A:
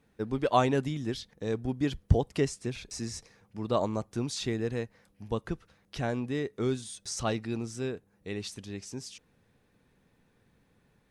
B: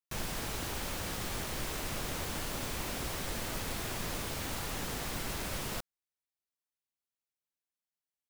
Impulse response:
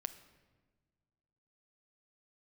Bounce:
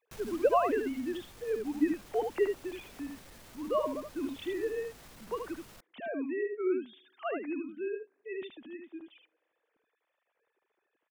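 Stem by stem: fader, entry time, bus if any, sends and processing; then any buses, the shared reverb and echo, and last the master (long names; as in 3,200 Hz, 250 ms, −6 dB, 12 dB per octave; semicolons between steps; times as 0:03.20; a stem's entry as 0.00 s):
−4.0 dB, 0.00 s, send −19 dB, echo send −5 dB, three sine waves on the formant tracks
−2.5 dB, 0.00 s, no send, no echo send, brickwall limiter −31.5 dBFS, peak gain reduction 7.5 dB; soft clipping −38 dBFS, distortion −15 dB; automatic ducking −7 dB, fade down 0.65 s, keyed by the first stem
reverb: on, pre-delay 6 ms
echo: single-tap delay 76 ms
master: no processing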